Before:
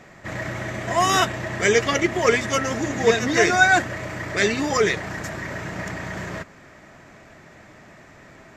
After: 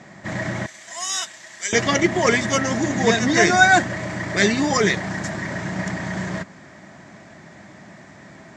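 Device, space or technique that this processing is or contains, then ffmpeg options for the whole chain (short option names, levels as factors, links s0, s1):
car door speaker: -filter_complex "[0:a]asettb=1/sr,asplit=3[s0][s1][s2];[s0]atrim=end=0.664[s3];[s1]atrim=start=0.66:end=1.73,asetpts=PTS-STARTPTS,afade=t=in:d=0.004:c=qsin,afade=t=out:st=1.066:d=0.004:c=qsin,aderivative[s4];[s2]atrim=start=1.726[s5];[s3][s4]acrossfade=d=0.004:c1=hsin:c2=qsin[s6];[s6][s5]acrossfade=d=0.004:c1=qsin:c2=hsin,highpass=96,equalizer=f=190:t=q:w=4:g=6,equalizer=f=460:t=q:w=4:g=-7,equalizer=f=1300:t=q:w=4:g=-5,equalizer=f=2600:t=q:w=4:g=-6,lowpass=f=8800:w=0.5412,lowpass=f=8800:w=1.3066,volume=1.58"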